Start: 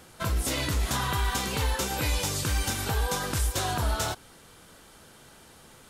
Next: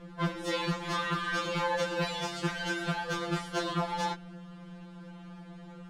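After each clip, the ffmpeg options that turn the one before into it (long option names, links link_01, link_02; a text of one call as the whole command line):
ffmpeg -i in.wav -af "adynamicsmooth=sensitivity=1:basefreq=2600,aeval=exprs='val(0)+0.00562*(sin(2*PI*60*n/s)+sin(2*PI*2*60*n/s)/2+sin(2*PI*3*60*n/s)/3+sin(2*PI*4*60*n/s)/4+sin(2*PI*5*60*n/s)/5)':channel_layout=same,afftfilt=real='re*2.83*eq(mod(b,8),0)':imag='im*2.83*eq(mod(b,8),0)':win_size=2048:overlap=0.75,volume=4.5dB" out.wav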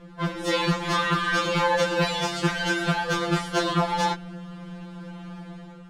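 ffmpeg -i in.wav -af "dynaudnorm=framelen=100:gausssize=7:maxgain=6.5dB,volume=1.5dB" out.wav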